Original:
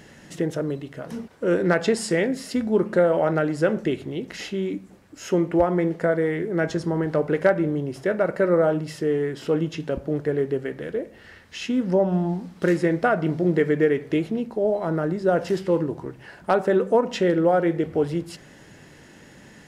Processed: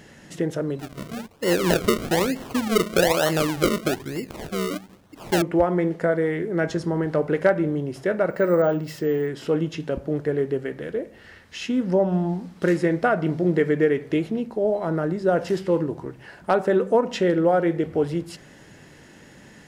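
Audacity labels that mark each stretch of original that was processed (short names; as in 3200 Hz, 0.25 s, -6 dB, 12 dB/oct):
0.790000	5.420000	decimation with a swept rate 36× 1.1 Hz
8.300000	9.280000	careless resampling rate divided by 2×, down filtered, up hold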